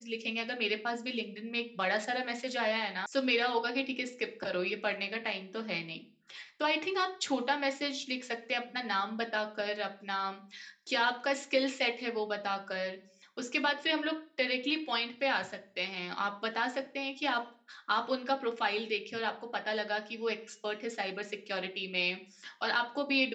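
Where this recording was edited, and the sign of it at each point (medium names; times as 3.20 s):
3.06 s: sound stops dead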